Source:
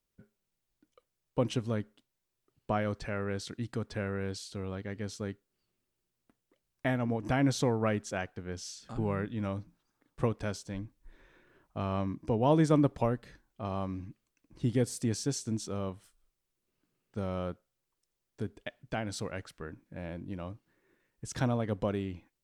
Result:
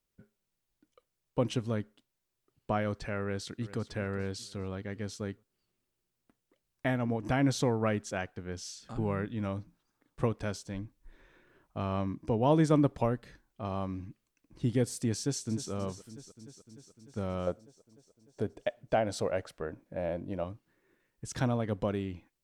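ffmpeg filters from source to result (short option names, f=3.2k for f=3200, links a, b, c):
-filter_complex "[0:a]asplit=2[a][b];[b]afade=t=in:st=3.21:d=0.01,afade=t=out:st=3.9:d=0.01,aecho=0:1:400|800|1200|1600:0.16788|0.0755462|0.0339958|0.0152981[c];[a][c]amix=inputs=2:normalize=0,asplit=2[d][e];[e]afade=t=in:st=15.19:d=0.01,afade=t=out:st=15.71:d=0.01,aecho=0:1:300|600|900|1200|1500|1800|2100|2400|2700|3000|3300:0.211349|0.158512|0.118884|0.0891628|0.0668721|0.0501541|0.0376156|0.0282117|0.0211588|0.0158691|0.0119018[f];[d][f]amix=inputs=2:normalize=0,asettb=1/sr,asplit=3[g][h][i];[g]atrim=end=17.474[j];[h]atrim=start=17.47:end=20.44,asetpts=PTS-STARTPTS,afade=t=in:d=0.004:c=qsin,afade=t=out:st=2.966:d=0.004:c=qsin,equalizer=f=600:w=1.4:g=12[k];[i]atrim=start=20.436[l];[j][k]acrossfade=d=0.004:c1=hsin:c2=qsin[m];[m][l]acrossfade=d=0.004:c1=qsin:c2=hsin"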